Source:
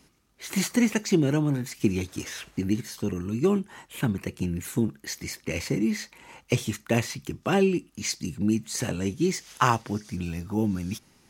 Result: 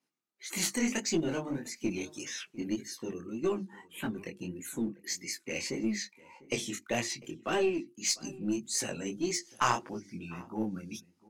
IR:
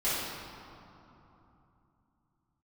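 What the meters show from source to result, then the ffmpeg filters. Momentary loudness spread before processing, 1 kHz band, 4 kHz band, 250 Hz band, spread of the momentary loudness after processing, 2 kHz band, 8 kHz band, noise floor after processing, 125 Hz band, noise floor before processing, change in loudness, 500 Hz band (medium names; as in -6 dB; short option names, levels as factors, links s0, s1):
10 LU, -5.0 dB, -1.5 dB, -8.5 dB, 11 LU, -4.5 dB, -0.5 dB, -72 dBFS, -14.5 dB, -61 dBFS, -6.5 dB, -6.0 dB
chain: -filter_complex "[0:a]highpass=240,bandreject=f=50:t=h:w=6,bandreject=f=100:t=h:w=6,bandreject=f=150:t=h:w=6,bandreject=f=200:t=h:w=6,bandreject=f=250:t=h:w=6,bandreject=f=300:t=h:w=6,bandreject=f=350:t=h:w=6,afftdn=nr=18:nf=-43,bandreject=f=430:w=12,flanger=delay=17.5:depth=7.3:speed=1.7,asplit=2[s0][s1];[s1]aeval=exprs='clip(val(0),-1,0.0237)':c=same,volume=0.562[s2];[s0][s2]amix=inputs=2:normalize=0,asplit=2[s3][s4];[s4]adelay=699.7,volume=0.0891,highshelf=f=4000:g=-15.7[s5];[s3][s5]amix=inputs=2:normalize=0,adynamicequalizer=threshold=0.00562:dfrequency=3300:dqfactor=0.7:tfrequency=3300:tqfactor=0.7:attack=5:release=100:ratio=0.375:range=3:mode=boostabove:tftype=highshelf,volume=0.562"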